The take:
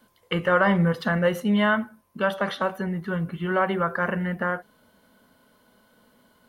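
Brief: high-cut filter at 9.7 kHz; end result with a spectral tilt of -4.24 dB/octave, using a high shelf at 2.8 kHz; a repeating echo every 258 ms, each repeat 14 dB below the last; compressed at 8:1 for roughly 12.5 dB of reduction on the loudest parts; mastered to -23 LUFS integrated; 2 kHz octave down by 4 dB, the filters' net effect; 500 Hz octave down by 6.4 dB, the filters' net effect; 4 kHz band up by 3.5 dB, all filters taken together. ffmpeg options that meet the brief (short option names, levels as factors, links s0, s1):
-af "lowpass=9700,equalizer=f=500:t=o:g=-7.5,equalizer=f=2000:t=o:g=-7.5,highshelf=f=2800:g=3.5,equalizer=f=4000:t=o:g=6.5,acompressor=threshold=0.0251:ratio=8,aecho=1:1:258|516:0.2|0.0399,volume=4.47"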